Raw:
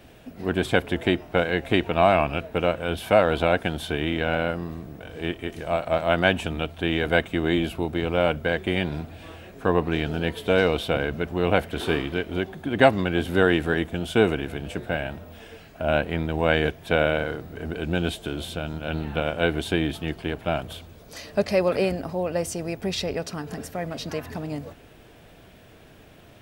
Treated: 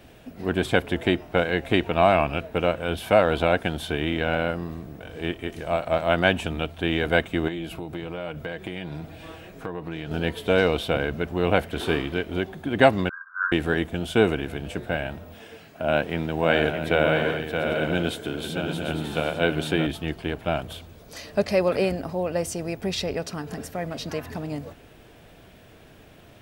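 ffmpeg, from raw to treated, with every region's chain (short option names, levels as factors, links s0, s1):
-filter_complex "[0:a]asettb=1/sr,asplit=3[s0][s1][s2];[s0]atrim=end=7.484[s3];[s1]atrim=start=7.48:end=10.11,asetpts=PTS-STARTPTS,afade=t=in:d=0.004:c=qsin,afade=t=out:st=2.626:d=0.004:c=qsin,acompressor=threshold=0.0316:ratio=4:attack=3.2:release=140:knee=1:detection=peak,aecho=1:1:6.3:0.37,atrim=end_sample=115983[s4];[s2]atrim=start=10.106[s5];[s3][s4]acrossfade=d=0.004:c1=hsin:c2=qsin[s6];[s6][s5]acrossfade=d=0.004:c1=qsin:c2=hsin,asettb=1/sr,asplit=3[s7][s8][s9];[s7]atrim=end=13.094[s10];[s8]atrim=start=13.09:end=13.52,asetpts=PTS-STARTPTS,afade=t=in:d=0.004:c=qsin,afade=t=out:st=0.426:d=0.004:c=qsin,asuperpass=centerf=1300:order=12:qfactor=2.2,asplit=2[s11][s12];[s12]adelay=12,volume=0.631[s13];[s11][s13]amix=inputs=2:normalize=0,atrim=end_sample=18963[s14];[s9]atrim=start=13.516[s15];[s10][s14]acrossfade=d=0.004:c1=hsin:c2=qsin[s16];[s16][s15]acrossfade=d=0.004:c1=qsin:c2=hsin,asettb=1/sr,asplit=3[s17][s18][s19];[s17]atrim=end=15.344[s20];[s18]atrim=start=15.34:end=19.87,asetpts=PTS-STARTPTS,afade=t=in:d=0.004:c=qsin,afade=t=out:st=4.526:d=0.004:c=qsin,highpass=110,aecho=1:1:624|746|849:0.531|0.316|0.266,atrim=end_sample=199773[s21];[s19]atrim=start=19.866[s22];[s20][s21]acrossfade=d=0.004:c1=hsin:c2=qsin[s23];[s23][s22]acrossfade=d=0.004:c1=qsin:c2=hsin"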